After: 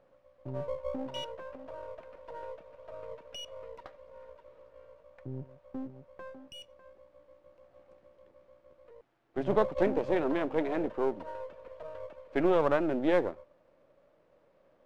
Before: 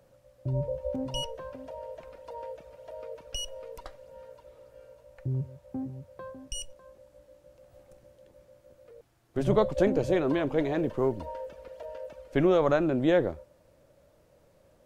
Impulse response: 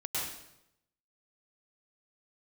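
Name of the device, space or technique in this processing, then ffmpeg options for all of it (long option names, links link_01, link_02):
crystal radio: -af "highpass=220,lowpass=2700,aeval=exprs='if(lt(val(0),0),0.447*val(0),val(0))':channel_layout=same"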